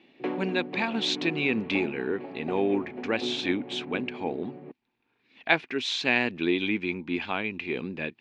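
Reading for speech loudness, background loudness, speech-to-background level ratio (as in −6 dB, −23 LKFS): −28.5 LKFS, −37.5 LKFS, 9.0 dB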